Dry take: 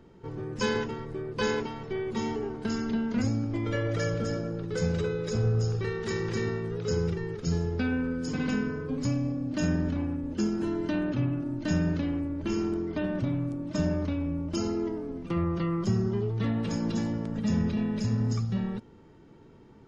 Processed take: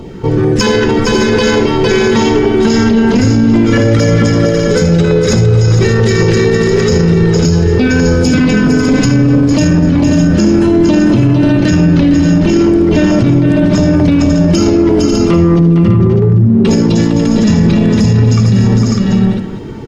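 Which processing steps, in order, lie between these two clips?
0:15.59–0:16.65: expanding power law on the bin magnitudes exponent 2.4
auto-filter notch saw down 4.5 Hz 520–1,800 Hz
in parallel at −6 dB: asymmetric clip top −36.5 dBFS
on the sum: multi-tap delay 53/77/456/544/602/794 ms −16.5/−10.5/−8/−8.5/−8/−16.5 dB
boost into a limiter +24 dB
level −1 dB

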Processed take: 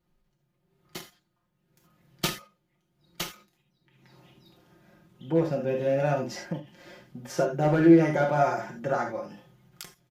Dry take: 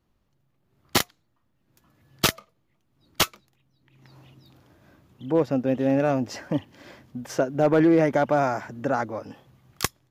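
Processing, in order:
notch filter 1,100 Hz, Q 15
comb filter 5.6 ms, depth 69%
convolution reverb, pre-delay 3 ms, DRR 1.5 dB
every ending faded ahead of time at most 160 dB per second
level −5.5 dB

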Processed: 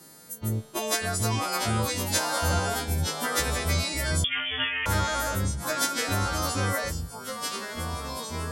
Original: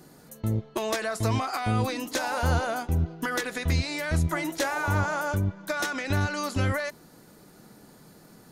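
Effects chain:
every partial snapped to a pitch grid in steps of 2 semitones
delay with pitch and tempo change per echo 516 ms, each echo −3 semitones, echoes 2, each echo −6 dB
0:04.24–0:04.86: voice inversion scrambler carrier 3,400 Hz
level −1.5 dB

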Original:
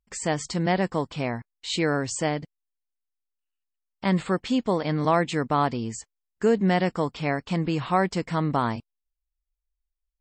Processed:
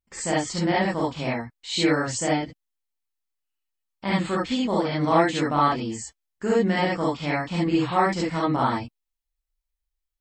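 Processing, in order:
reverb whose tail is shaped and stops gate 90 ms rising, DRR −6 dB
level −4.5 dB

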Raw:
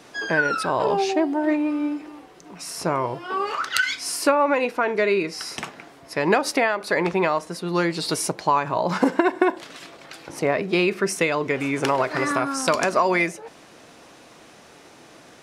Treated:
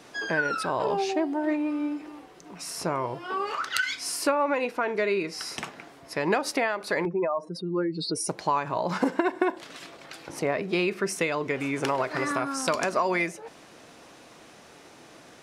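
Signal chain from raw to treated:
0:07.05–0:08.29: expanding power law on the bin magnitudes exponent 2.3
in parallel at −3 dB: downward compressor, threshold −28 dBFS, peak gain reduction 14.5 dB
on the sum: level −7 dB

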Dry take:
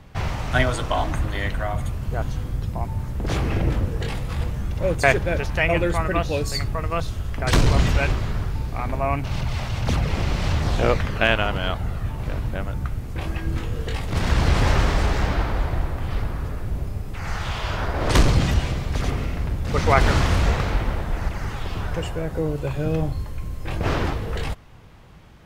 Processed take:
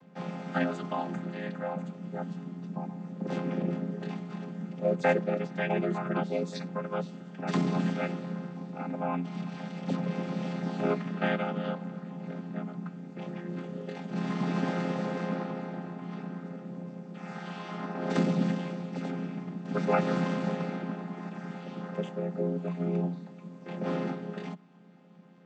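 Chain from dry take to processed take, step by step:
channel vocoder with a chord as carrier minor triad, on F3
level −6 dB

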